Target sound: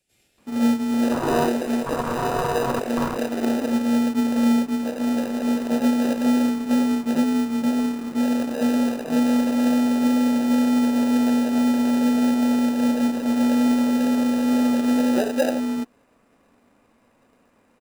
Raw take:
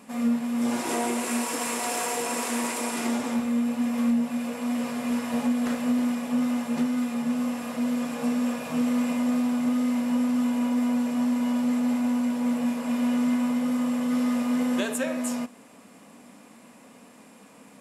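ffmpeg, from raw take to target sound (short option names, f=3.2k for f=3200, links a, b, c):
-filter_complex "[0:a]afwtdn=0.0501,bass=f=250:g=-13,treble=f=4k:g=-11,acrossover=split=3200[a][b];[a]adelay=380[c];[c][b]amix=inputs=2:normalize=0,asplit=2[d][e];[e]acrusher=samples=40:mix=1:aa=0.000001,volume=-3dB[f];[d][f]amix=inputs=2:normalize=0,volume=8dB"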